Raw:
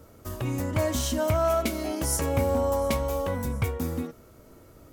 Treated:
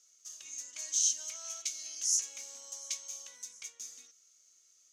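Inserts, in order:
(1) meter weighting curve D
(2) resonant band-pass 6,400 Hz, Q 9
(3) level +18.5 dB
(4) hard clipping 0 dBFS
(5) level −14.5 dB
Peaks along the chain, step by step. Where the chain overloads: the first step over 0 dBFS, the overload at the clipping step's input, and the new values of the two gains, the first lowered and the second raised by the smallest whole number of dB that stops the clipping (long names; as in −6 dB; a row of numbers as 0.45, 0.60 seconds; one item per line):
−7.0, −20.0, −1.5, −1.5, −16.0 dBFS
no step passes full scale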